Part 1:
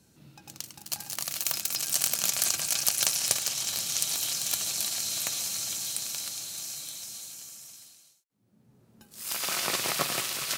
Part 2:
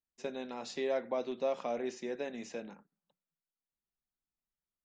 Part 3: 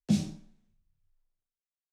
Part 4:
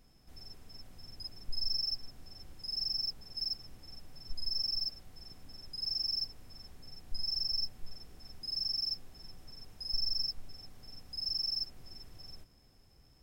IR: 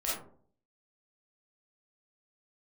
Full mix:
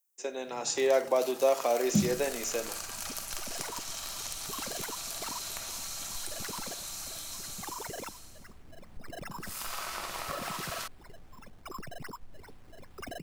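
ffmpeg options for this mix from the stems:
-filter_complex "[0:a]equalizer=f=1.1k:t=o:w=1.4:g=11,acompressor=threshold=-37dB:ratio=4,adelay=300,volume=-10dB,asplit=2[a][b];[b]volume=-4dB[c];[1:a]highpass=f=310:w=0.5412,highpass=f=310:w=1.3066,aexciter=amount=5.5:drive=3.9:freq=5.9k,volume=2.5dB,asplit=3[d][e][f];[e]volume=-19dB[g];[2:a]adelay=1850,volume=-5.5dB[h];[3:a]acompressor=threshold=-38dB:ratio=6,acrusher=samples=13:mix=1:aa=0.000001:lfo=1:lforange=13:lforate=2.5,adelay=1850,volume=-5.5dB[i];[f]apad=whole_len=479680[j];[a][j]sidechaincompress=threshold=-35dB:ratio=8:attack=16:release=431[k];[4:a]atrim=start_sample=2205[l];[c][g]amix=inputs=2:normalize=0[m];[m][l]afir=irnorm=-1:irlink=0[n];[k][d][h][i][n]amix=inputs=5:normalize=0,dynaudnorm=f=100:g=11:m=5dB"

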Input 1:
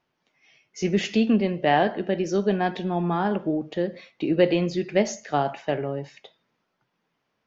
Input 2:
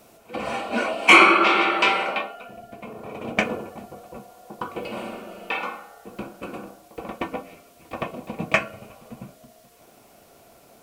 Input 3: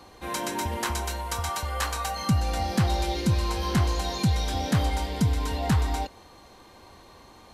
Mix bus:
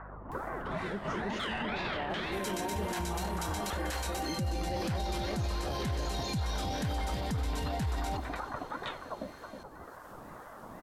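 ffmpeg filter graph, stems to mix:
-filter_complex "[0:a]aeval=exprs='val(0)+0.00891*(sin(2*PI*50*n/s)+sin(2*PI*2*50*n/s)/2+sin(2*PI*3*50*n/s)/3+sin(2*PI*4*50*n/s)/4+sin(2*PI*5*50*n/s)/5)':c=same,volume=-7dB,asplit=2[a][b];[b]volume=-8dB[c];[1:a]lowshelf=f=330:g=10,acompressor=mode=upward:threshold=-31dB:ratio=2.5,aeval=exprs='val(0)*sin(2*PI*870*n/s+870*0.55/2*sin(2*PI*2*n/s))':c=same,volume=-3dB,asplit=2[d][e];[e]volume=-9.5dB[f];[2:a]equalizer=f=1.2k:t=o:w=0.22:g=-12.5,adelay=2100,volume=-2.5dB,asplit=2[g][h];[h]volume=-14.5dB[i];[a][d]amix=inputs=2:normalize=0,lowpass=f=1.4k:w=0.5412,lowpass=f=1.4k:w=1.3066,acompressor=threshold=-34dB:ratio=6,volume=0dB[j];[c][f][i]amix=inputs=3:normalize=0,aecho=0:1:317:1[k];[g][j][k]amix=inputs=3:normalize=0,alimiter=level_in=2dB:limit=-24dB:level=0:latency=1:release=17,volume=-2dB"

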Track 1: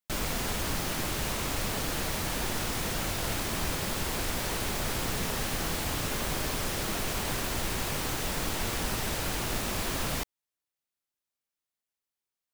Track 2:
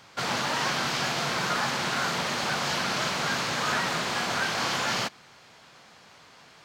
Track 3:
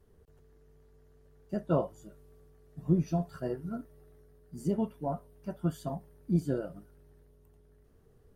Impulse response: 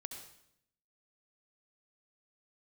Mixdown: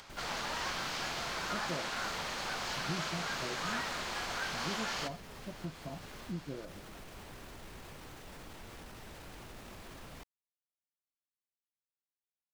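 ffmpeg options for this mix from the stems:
-filter_complex "[0:a]alimiter=level_in=1dB:limit=-24dB:level=0:latency=1:release=13,volume=-1dB,volume=-14dB[a];[1:a]lowshelf=f=190:g=-11.5,acompressor=mode=upward:threshold=-37dB:ratio=2.5,volume=-11.5dB,asplit=2[b][c];[c]volume=-6.5dB[d];[2:a]volume=-5dB[e];[a][e]amix=inputs=2:normalize=0,highshelf=f=4.7k:g=-8.5,acompressor=threshold=-40dB:ratio=2.5,volume=0dB[f];[3:a]atrim=start_sample=2205[g];[d][g]afir=irnorm=-1:irlink=0[h];[b][f][h]amix=inputs=3:normalize=0"

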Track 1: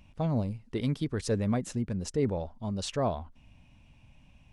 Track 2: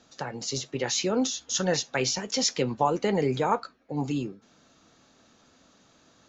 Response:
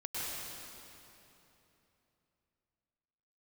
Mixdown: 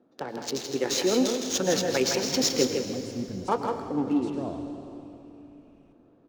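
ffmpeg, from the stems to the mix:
-filter_complex "[0:a]adelay=1400,volume=-10dB,asplit=2[a][b];[b]volume=-11.5dB[c];[1:a]highpass=f=300:p=1,highshelf=f=3.5k:g=6,adynamicsmooth=sensitivity=5:basefreq=790,volume=-5.5dB,asplit=3[d][e][f];[d]atrim=end=2.67,asetpts=PTS-STARTPTS,afade=t=out:st=2.666:d=0.004:c=hsin[g];[e]atrim=start=2.67:end=3.48,asetpts=PTS-STARTPTS,volume=0[h];[f]atrim=start=3.48,asetpts=PTS-STARTPTS,afade=t=in:d=0.004:c=hsin[i];[g][h][i]concat=n=3:v=0:a=1,asplit=4[j][k][l][m];[k]volume=-7dB[n];[l]volume=-3.5dB[o];[m]apad=whole_len=261211[p];[a][p]sidechaincompress=threshold=-46dB:ratio=8:attack=16:release=451[q];[2:a]atrim=start_sample=2205[r];[c][n]amix=inputs=2:normalize=0[s];[s][r]afir=irnorm=-1:irlink=0[t];[o]aecho=0:1:162:1[u];[q][j][t][u]amix=inputs=4:normalize=0,equalizer=f=320:w=0.9:g=11"

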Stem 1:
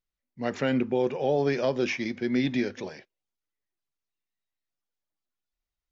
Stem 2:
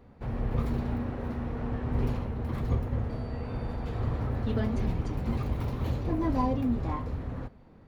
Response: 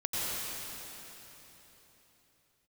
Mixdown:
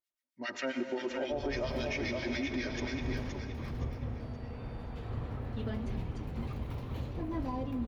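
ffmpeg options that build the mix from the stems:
-filter_complex "[0:a]highpass=f=720:p=1,aecho=1:1:3.2:0.7,acrossover=split=1300[a][b];[a]aeval=exprs='val(0)*(1-1/2+1/2*cos(2*PI*7.4*n/s))':c=same[c];[b]aeval=exprs='val(0)*(1-1/2-1/2*cos(2*PI*7.4*n/s))':c=same[d];[c][d]amix=inputs=2:normalize=0,volume=0dB,asplit=3[e][f][g];[f]volume=-13dB[h];[g]volume=-4.5dB[i];[1:a]equalizer=f=3k:w=1.5:g=4,adelay=1100,volume=-8.5dB,asplit=2[j][k];[k]volume=-20.5dB[l];[2:a]atrim=start_sample=2205[m];[h][l]amix=inputs=2:normalize=0[n];[n][m]afir=irnorm=-1:irlink=0[o];[i]aecho=0:1:520|1040|1560|2080|2600:1|0.33|0.109|0.0359|0.0119[p];[e][j][o][p]amix=inputs=4:normalize=0,alimiter=level_in=1dB:limit=-24dB:level=0:latency=1:release=97,volume=-1dB"

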